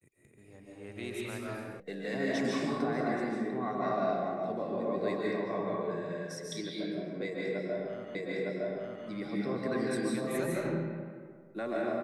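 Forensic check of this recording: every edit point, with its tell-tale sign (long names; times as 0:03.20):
0:01.80: cut off before it has died away
0:08.15: the same again, the last 0.91 s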